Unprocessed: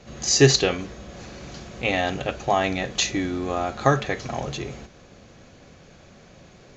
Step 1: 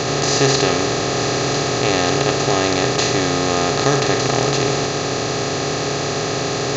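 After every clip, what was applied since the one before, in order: spectral levelling over time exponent 0.2; trim -5 dB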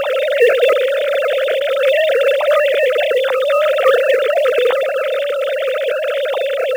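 formants replaced by sine waves; in parallel at -5.5 dB: short-mantissa float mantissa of 2-bit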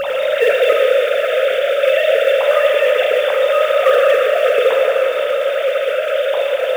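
plate-style reverb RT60 4.5 s, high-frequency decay 0.8×, DRR -0.5 dB; trim -3 dB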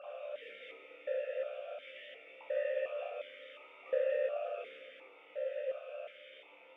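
chord resonator C2 fifth, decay 0.47 s; stepped vowel filter 2.8 Hz; trim -4.5 dB

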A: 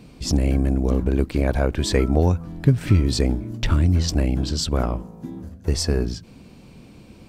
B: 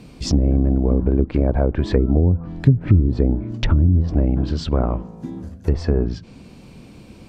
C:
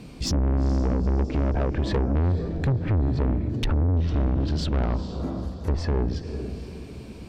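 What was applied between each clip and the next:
low-pass that closes with the level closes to 350 Hz, closed at -13.5 dBFS; trim +3 dB
echo that smears into a reverb 459 ms, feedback 41%, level -12.5 dB; saturation -19 dBFS, distortion -8 dB

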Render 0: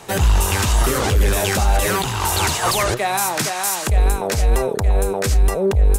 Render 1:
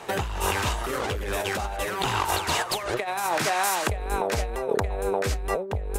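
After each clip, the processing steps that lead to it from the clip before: tone controls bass -9 dB, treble -9 dB; compressor with a negative ratio -24 dBFS, ratio -0.5; trim -2 dB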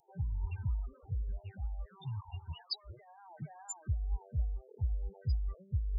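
loudest bins only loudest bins 8; FFT filter 150 Hz 0 dB, 420 Hz -29 dB, 710 Hz -24 dB, 2 kHz -22 dB, 5.5 kHz +12 dB; trim -3 dB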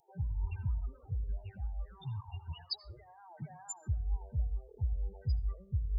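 reverberation RT60 0.45 s, pre-delay 72 ms, DRR 17 dB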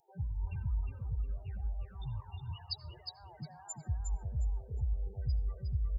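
feedback delay 359 ms, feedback 19%, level -5 dB; trim -1.5 dB

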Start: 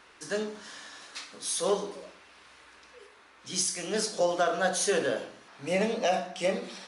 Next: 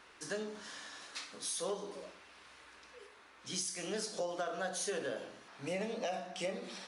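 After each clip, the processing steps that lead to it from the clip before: compression 3:1, threshold -34 dBFS, peak gain reduction 10 dB; trim -3 dB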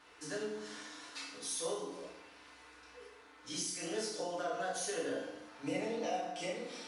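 FDN reverb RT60 0.86 s, low-frequency decay 1×, high-frequency decay 0.75×, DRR -5 dB; trim -6 dB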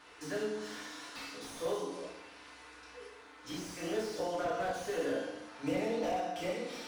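slew-rate limiter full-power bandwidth 14 Hz; trim +4 dB

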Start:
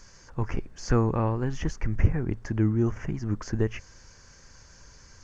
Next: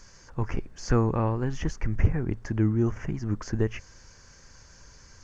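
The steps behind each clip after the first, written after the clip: hard clipper -10 dBFS, distortion -28 dB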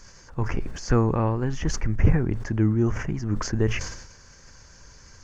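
decay stretcher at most 61 dB/s; trim +2 dB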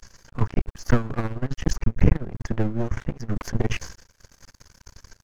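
half-wave rectifier; transient shaper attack +9 dB, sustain -9 dB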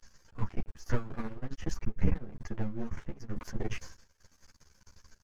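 three-phase chorus; trim -8 dB

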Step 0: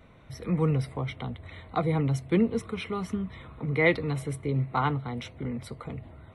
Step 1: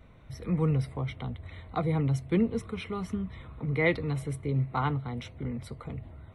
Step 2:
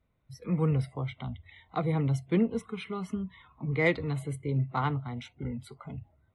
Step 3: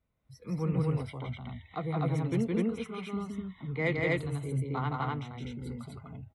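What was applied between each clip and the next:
bass shelf 99 Hz +9.5 dB; trim -3.5 dB
Chebyshev shaper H 6 -42 dB, 7 -35 dB, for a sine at -12.5 dBFS; spectral noise reduction 19 dB
loudspeakers at several distances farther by 57 m -2 dB, 86 m 0 dB; trim -5.5 dB

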